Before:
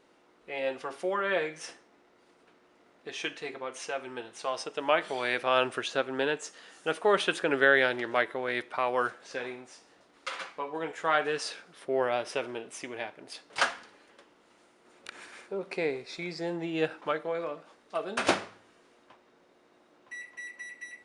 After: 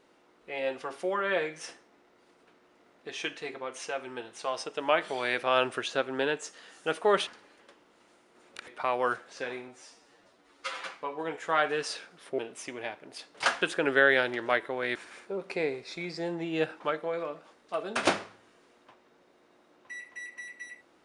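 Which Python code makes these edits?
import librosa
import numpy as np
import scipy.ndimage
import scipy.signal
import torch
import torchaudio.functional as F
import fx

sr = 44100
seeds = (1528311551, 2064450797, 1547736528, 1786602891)

y = fx.edit(x, sr, fx.swap(start_s=7.27, length_s=1.34, other_s=13.77, other_length_s=1.4),
    fx.stretch_span(start_s=9.62, length_s=0.77, factor=1.5),
    fx.cut(start_s=11.94, length_s=0.6), tone=tone)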